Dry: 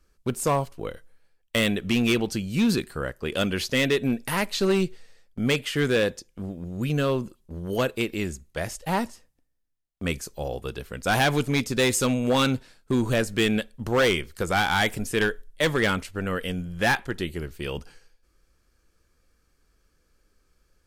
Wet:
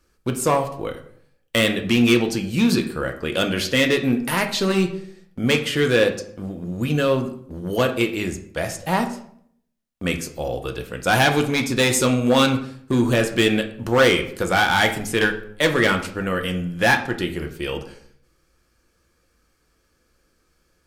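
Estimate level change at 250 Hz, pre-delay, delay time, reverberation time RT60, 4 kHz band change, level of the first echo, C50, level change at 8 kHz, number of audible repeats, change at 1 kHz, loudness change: +4.5 dB, 3 ms, no echo audible, 0.65 s, +5.0 dB, no echo audible, 11.0 dB, +4.0 dB, no echo audible, +5.0 dB, +5.0 dB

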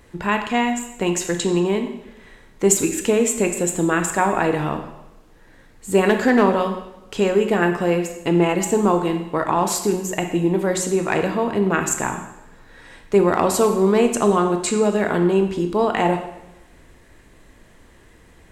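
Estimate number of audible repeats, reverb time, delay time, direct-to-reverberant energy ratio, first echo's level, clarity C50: no echo audible, 0.95 s, no echo audible, 5.5 dB, no echo audible, 8.0 dB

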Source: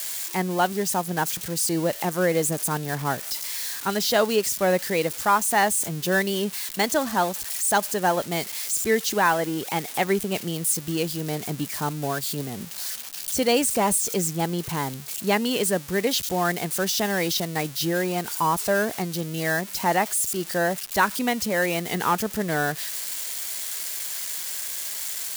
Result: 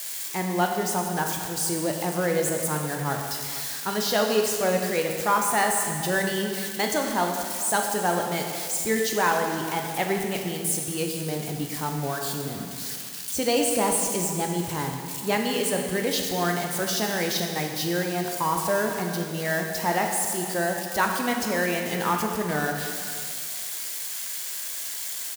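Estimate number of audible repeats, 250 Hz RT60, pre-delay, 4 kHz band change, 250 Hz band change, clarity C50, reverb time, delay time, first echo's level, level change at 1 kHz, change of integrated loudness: 1, 2.0 s, 8 ms, −1.5 dB, −1.5 dB, 3.5 dB, 1.9 s, 457 ms, −17.5 dB, −1.5 dB, −1.5 dB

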